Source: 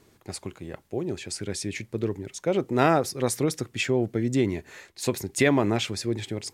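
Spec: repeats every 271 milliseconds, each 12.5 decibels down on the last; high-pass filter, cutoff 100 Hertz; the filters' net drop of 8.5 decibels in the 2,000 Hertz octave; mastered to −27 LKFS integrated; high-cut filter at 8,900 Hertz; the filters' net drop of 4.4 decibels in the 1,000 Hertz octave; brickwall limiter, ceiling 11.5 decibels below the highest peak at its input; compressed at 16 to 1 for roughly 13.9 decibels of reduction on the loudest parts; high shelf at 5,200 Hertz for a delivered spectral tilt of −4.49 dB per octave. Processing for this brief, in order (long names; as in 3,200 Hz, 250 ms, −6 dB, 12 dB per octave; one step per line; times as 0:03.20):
high-pass filter 100 Hz
low-pass filter 8,900 Hz
parametric band 1,000 Hz −4 dB
parametric band 2,000 Hz −9 dB
high-shelf EQ 5,200 Hz −4.5 dB
downward compressor 16 to 1, threshold −31 dBFS
brickwall limiter −30 dBFS
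repeating echo 271 ms, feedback 24%, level −12.5 dB
level +13.5 dB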